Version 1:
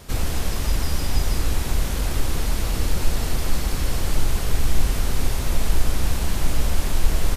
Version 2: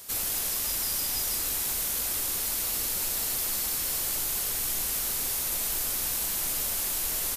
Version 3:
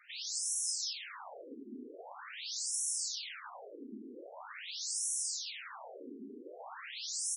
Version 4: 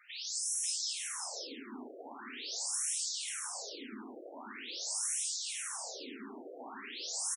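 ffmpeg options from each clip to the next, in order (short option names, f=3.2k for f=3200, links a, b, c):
-af "aemphasis=mode=production:type=riaa,volume=-8dB"
-af "afreqshift=210,afftfilt=real='re*between(b*sr/1024,300*pow(7800/300,0.5+0.5*sin(2*PI*0.44*pts/sr))/1.41,300*pow(7800/300,0.5+0.5*sin(2*PI*0.44*pts/sr))*1.41)':imag='im*between(b*sr/1024,300*pow(7800/300,0.5+0.5*sin(2*PI*0.44*pts/sr))/1.41,300*pow(7800/300,0.5+0.5*sin(2*PI*0.44*pts/sr))*1.41)':win_size=1024:overlap=0.75"
-af "aecho=1:1:56|540:0.211|0.501"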